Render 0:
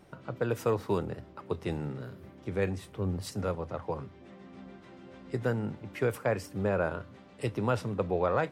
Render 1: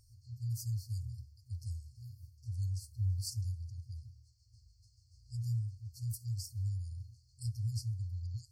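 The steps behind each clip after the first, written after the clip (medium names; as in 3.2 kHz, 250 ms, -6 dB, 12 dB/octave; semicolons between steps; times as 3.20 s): FFT band-reject 120–4200 Hz; trim +2 dB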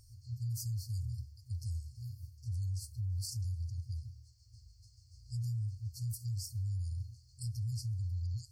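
peak limiter -36.5 dBFS, peak gain reduction 10 dB; trim +5 dB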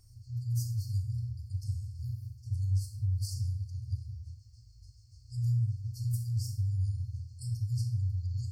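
simulated room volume 2000 m³, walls furnished, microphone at 3.4 m; trim -3 dB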